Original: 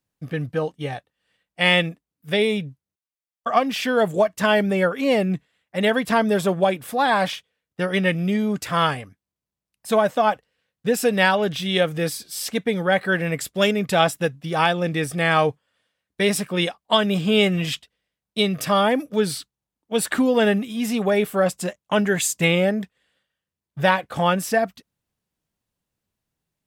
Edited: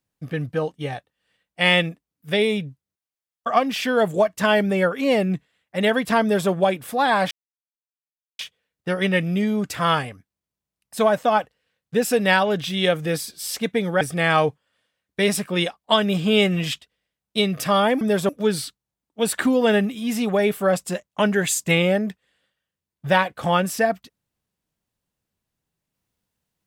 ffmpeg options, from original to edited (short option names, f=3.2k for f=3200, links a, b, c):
-filter_complex "[0:a]asplit=5[a][b][c][d][e];[a]atrim=end=7.31,asetpts=PTS-STARTPTS,afade=t=out:st=7.306:d=0.004:c=hsin,apad=pad_dur=1.08[f];[b]atrim=start=7.31:end=12.932,asetpts=PTS-STARTPTS,afade=t=in:d=0.004:c=hsin[g];[c]atrim=start=15.018:end=19.022[h];[d]atrim=start=6.218:end=6.502[i];[e]atrim=start=19.018[j];[f][g]concat=n=2:v=0:a=1[k];[k][h]acrossfade=d=0.004:c1=hsin:c2=hsin[l];[l][i]acrossfade=d=0.004:c1=hsin:c2=hsin[m];[m][j]acrossfade=d=0.004:c1=hsin:c2=hsin"